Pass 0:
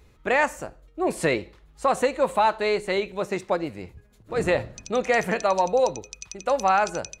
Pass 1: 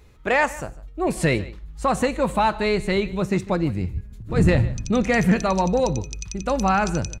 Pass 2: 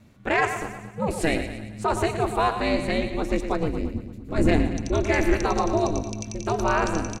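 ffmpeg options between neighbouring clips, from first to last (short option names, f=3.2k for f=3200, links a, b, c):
-af "asubboost=boost=8.5:cutoff=200,aecho=1:1:151:0.1,acontrast=90,volume=-4.5dB"
-filter_complex "[0:a]asplit=2[a][b];[b]aecho=0:1:114|228|342|456|570|684:0.335|0.178|0.0941|0.0499|0.0264|0.014[c];[a][c]amix=inputs=2:normalize=0,aeval=exprs='val(0)*sin(2*PI*160*n/s)':c=same"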